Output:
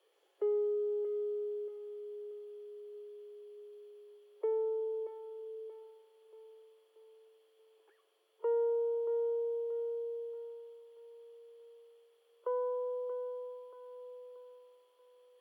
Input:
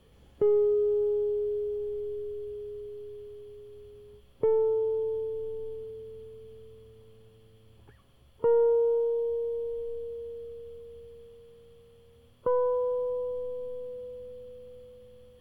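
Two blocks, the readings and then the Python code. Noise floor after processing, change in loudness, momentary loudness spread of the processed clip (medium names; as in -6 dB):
-71 dBFS, -8.0 dB, 22 LU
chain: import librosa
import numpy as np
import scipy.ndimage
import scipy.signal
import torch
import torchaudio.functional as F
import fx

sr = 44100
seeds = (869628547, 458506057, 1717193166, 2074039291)

y = scipy.signal.sosfilt(scipy.signal.butter(12, 350.0, 'highpass', fs=sr, output='sos'), x)
y = fx.echo_feedback(y, sr, ms=631, feedback_pct=45, wet_db=-10)
y = F.gain(torch.from_numpy(y), -8.5).numpy()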